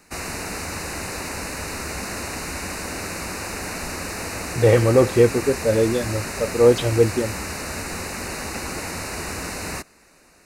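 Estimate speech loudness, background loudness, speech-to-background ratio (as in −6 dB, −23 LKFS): −19.0 LKFS, −29.0 LKFS, 10.0 dB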